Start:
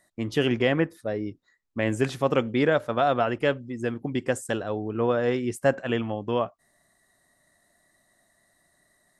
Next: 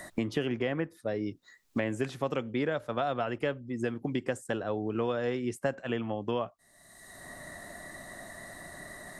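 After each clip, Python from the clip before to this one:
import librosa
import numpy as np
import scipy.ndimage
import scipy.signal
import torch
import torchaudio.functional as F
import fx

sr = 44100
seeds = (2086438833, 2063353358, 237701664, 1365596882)

y = fx.band_squash(x, sr, depth_pct=100)
y = F.gain(torch.from_numpy(y), -7.5).numpy()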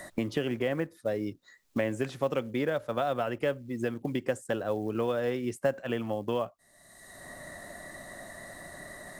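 y = fx.peak_eq(x, sr, hz=550.0, db=4.5, octaves=0.27)
y = fx.quant_float(y, sr, bits=4)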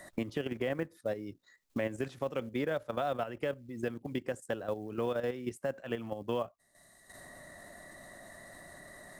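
y = fx.level_steps(x, sr, step_db=10)
y = F.gain(torch.from_numpy(y), -1.5).numpy()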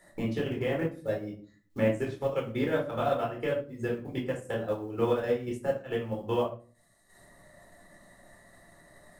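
y = fx.room_shoebox(x, sr, seeds[0], volume_m3=510.0, walls='furnished', distance_m=4.2)
y = fx.upward_expand(y, sr, threshold_db=-45.0, expansion=1.5)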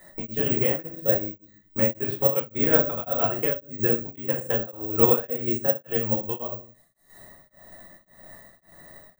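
y = (np.kron(x[::2], np.eye(2)[0]) * 2)[:len(x)]
y = y * np.abs(np.cos(np.pi * 1.8 * np.arange(len(y)) / sr))
y = F.gain(torch.from_numpy(y), 6.5).numpy()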